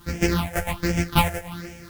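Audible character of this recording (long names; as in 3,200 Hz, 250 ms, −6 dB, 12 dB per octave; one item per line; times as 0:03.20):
a buzz of ramps at a fixed pitch in blocks of 256 samples
phaser sweep stages 6, 1.3 Hz, lowest notch 270–1,100 Hz
a quantiser's noise floor 10 bits, dither triangular
a shimmering, thickened sound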